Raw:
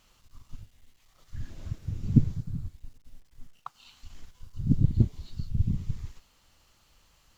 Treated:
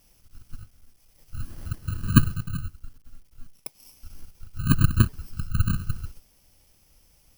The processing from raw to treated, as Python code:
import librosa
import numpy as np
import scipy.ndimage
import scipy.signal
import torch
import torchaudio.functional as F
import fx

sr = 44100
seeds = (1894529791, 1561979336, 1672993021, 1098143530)

y = fx.bit_reversed(x, sr, seeds[0], block=32)
y = F.gain(torch.from_numpy(y), 3.5).numpy()